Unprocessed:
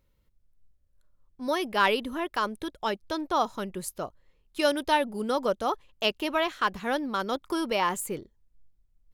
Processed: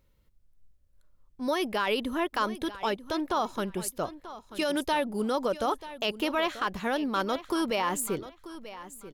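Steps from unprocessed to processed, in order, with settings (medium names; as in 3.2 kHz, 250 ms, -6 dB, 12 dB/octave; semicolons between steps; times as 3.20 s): peak limiter -21 dBFS, peak gain reduction 11.5 dB; feedback delay 937 ms, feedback 22%, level -15 dB; trim +2.5 dB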